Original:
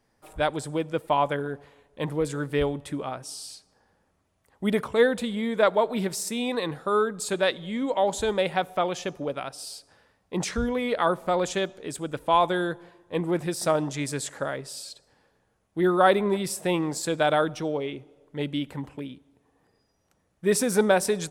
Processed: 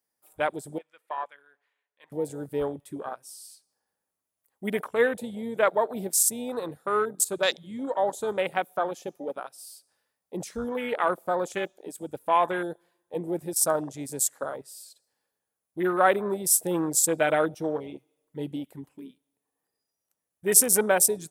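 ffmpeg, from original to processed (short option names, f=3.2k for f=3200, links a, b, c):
-filter_complex "[0:a]asettb=1/sr,asplit=3[a][b][c];[a]atrim=end=0.784[d];[b]atrim=start=0.78:end=2.12,asetpts=PTS-STARTPTS,afade=t=in:d=0.004:c=qsin,afade=t=out:st=1.336:d=0.004:c=qsin,bandpass=f=1.9k:t=q:w=1.4[e];[c]atrim=start=2.116[f];[d][e]acrossfade=d=0.004:c1=hsin:c2=qsin[g];[g][f]acrossfade=d=0.004:c1=qsin:c2=hsin,asettb=1/sr,asplit=3[h][i][j];[h]atrim=end=16.514[k];[i]atrim=start=16.51:end=18.56,asetpts=PTS-STARTPTS,afade=t=in:d=0.004:c=qsin,afade=t=out:st=2.046:d=0.004:c=qsin,aecho=1:1:6.2:0.65,atrim=end_sample=90405[l];[j]atrim=start=18.556[m];[k][l]acrossfade=d=0.004:c1=hsin:c2=qsin[n];[n][m]acrossfade=d=0.004:c1=qsin:c2=hsin,aemphasis=mode=production:type=bsi,afwtdn=0.0316,equalizer=f=13k:w=0.77:g=5.5,volume=-1dB"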